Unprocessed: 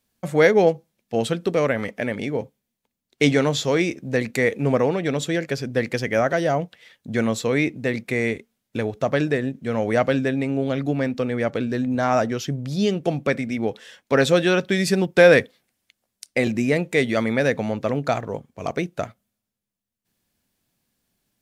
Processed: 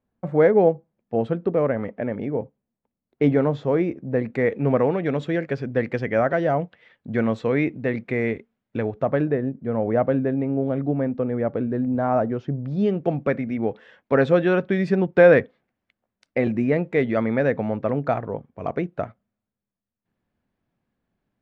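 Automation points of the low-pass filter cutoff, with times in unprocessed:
0:04.17 1,100 Hz
0:04.63 1,900 Hz
0:08.79 1,900 Hz
0:09.43 1,000 Hz
0:12.39 1,000 Hz
0:13.04 1,600 Hz

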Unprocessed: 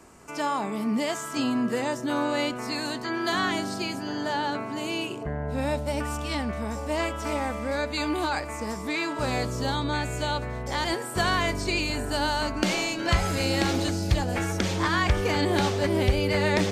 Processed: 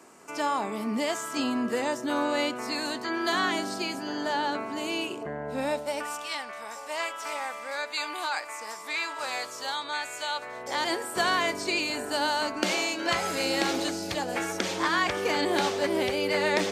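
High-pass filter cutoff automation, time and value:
0:05.60 250 Hz
0:06.32 860 Hz
0:10.32 860 Hz
0:10.79 310 Hz

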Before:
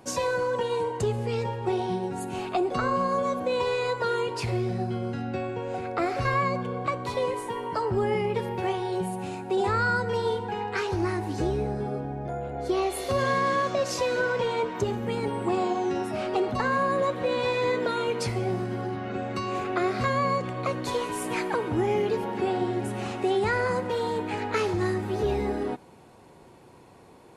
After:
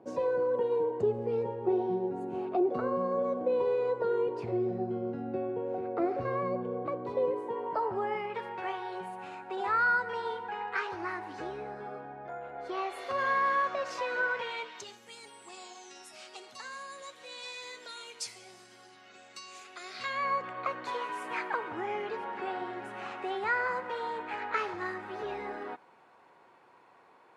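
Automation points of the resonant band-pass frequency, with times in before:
resonant band-pass, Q 1.2
0:07.35 410 Hz
0:08.28 1,400 Hz
0:14.28 1,400 Hz
0:15.03 6,900 Hz
0:19.80 6,900 Hz
0:20.35 1,400 Hz

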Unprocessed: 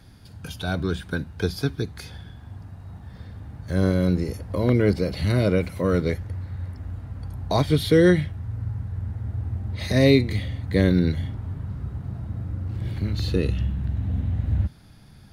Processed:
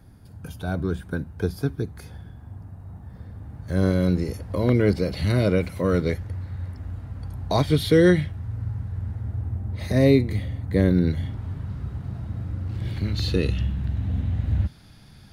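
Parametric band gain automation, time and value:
parametric band 3,800 Hz 2.2 octaves
0:03.25 −11.5 dB
0:03.91 0 dB
0:09.13 0 dB
0:09.67 −8 dB
0:10.95 −8 dB
0:11.43 +4 dB

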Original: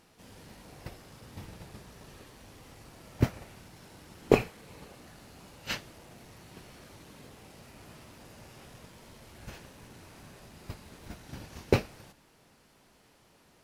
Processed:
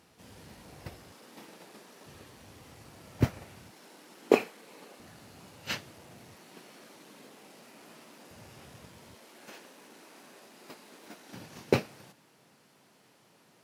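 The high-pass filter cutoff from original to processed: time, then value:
high-pass filter 24 dB per octave
53 Hz
from 0:01.12 230 Hz
from 0:02.05 64 Hz
from 0:03.71 230 Hz
from 0:05.00 80 Hz
from 0:06.35 200 Hz
from 0:08.31 64 Hz
from 0:09.15 240 Hz
from 0:11.34 120 Hz

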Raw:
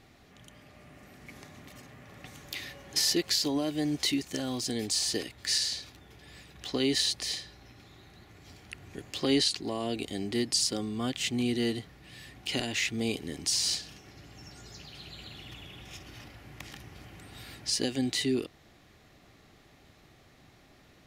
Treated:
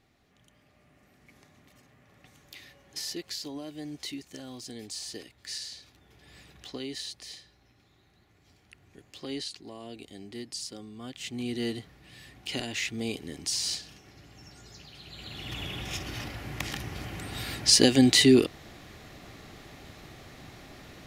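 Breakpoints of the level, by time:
0:05.74 −9.5 dB
0:06.49 −1 dB
0:06.87 −10.5 dB
0:11.00 −10.5 dB
0:11.65 −2 dB
0:15.03 −2 dB
0:15.62 +10.5 dB

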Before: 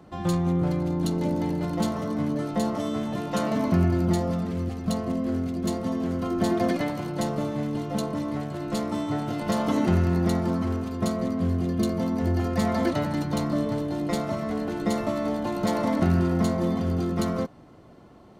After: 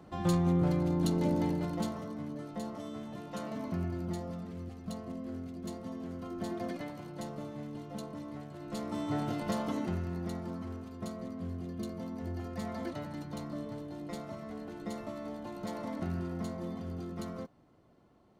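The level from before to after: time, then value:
0:01.44 −3.5 dB
0:02.21 −13.5 dB
0:08.55 −13.5 dB
0:09.23 −4 dB
0:10.01 −14 dB

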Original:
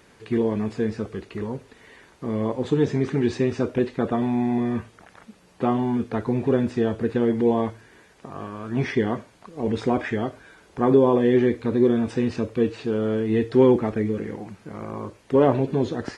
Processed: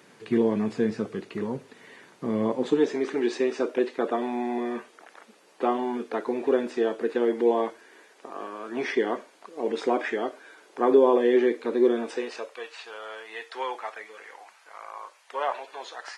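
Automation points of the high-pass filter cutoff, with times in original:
high-pass filter 24 dB per octave
0:02.46 140 Hz
0:02.88 310 Hz
0:12.02 310 Hz
0:12.67 770 Hz

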